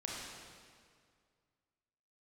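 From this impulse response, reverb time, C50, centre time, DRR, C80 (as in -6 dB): 2.1 s, -1.5 dB, 0.115 s, -4.0 dB, 0.5 dB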